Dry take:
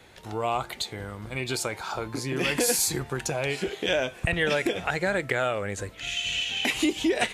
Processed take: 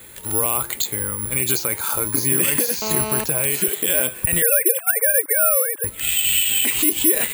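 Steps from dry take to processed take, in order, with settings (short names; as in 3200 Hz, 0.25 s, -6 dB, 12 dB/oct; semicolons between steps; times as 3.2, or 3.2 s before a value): 4.42–5.84 sine-wave speech; bell 730 Hz -10 dB 0.38 oct; limiter -21 dBFS, peak gain reduction 8.5 dB; careless resampling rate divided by 4×, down filtered, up zero stuff; 2.82–3.24 GSM buzz -33 dBFS; gain +6 dB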